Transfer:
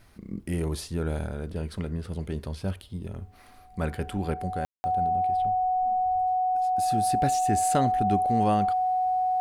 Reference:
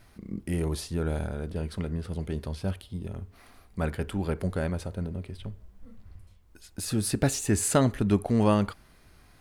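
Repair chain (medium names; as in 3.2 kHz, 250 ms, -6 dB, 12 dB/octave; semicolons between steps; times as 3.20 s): band-stop 740 Hz, Q 30; room tone fill 4.65–4.84 s; trim 0 dB, from 4.34 s +3.5 dB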